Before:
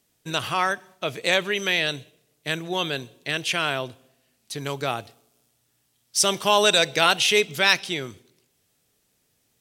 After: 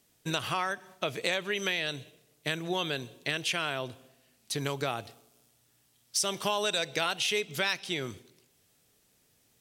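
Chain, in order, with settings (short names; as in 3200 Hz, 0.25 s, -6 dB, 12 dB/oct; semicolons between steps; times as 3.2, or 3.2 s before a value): compressor 4:1, threshold -29 dBFS, peak gain reduction 14 dB; gain +1 dB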